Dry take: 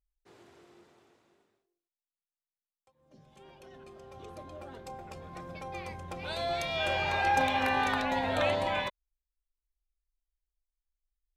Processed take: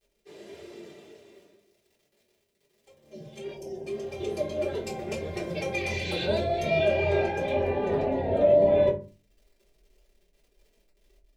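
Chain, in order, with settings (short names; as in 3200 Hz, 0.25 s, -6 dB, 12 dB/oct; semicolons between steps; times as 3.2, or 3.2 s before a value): 5.91–6.24 spectral repair 1500–7900 Hz both; tilt shelf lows -5 dB, about 1100 Hz, from 6.24 s lows +3.5 dB, from 7.52 s lows +9.5 dB; crackle 100/s -59 dBFS; AGC gain up to 4.5 dB; flange 1.7 Hz, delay 1.1 ms, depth 5.9 ms, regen +37%; compressor 12:1, threshold -36 dBFS, peak gain reduction 18 dB; EQ curve 150 Hz 0 dB, 540 Hz +6 dB, 1200 Hz -14 dB, 2200 Hz -1 dB, 9900 Hz -5 dB; 3.53–3.86 spectral gain 990–4600 Hz -15 dB; notches 50/100/150/200 Hz; reverb RT60 0.35 s, pre-delay 3 ms, DRR -8.5 dB; gain +4 dB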